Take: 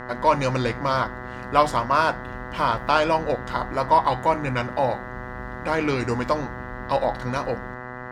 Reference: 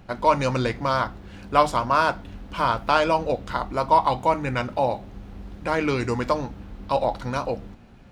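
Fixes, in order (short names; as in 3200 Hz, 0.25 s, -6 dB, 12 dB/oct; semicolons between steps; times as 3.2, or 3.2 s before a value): de-hum 124.7 Hz, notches 16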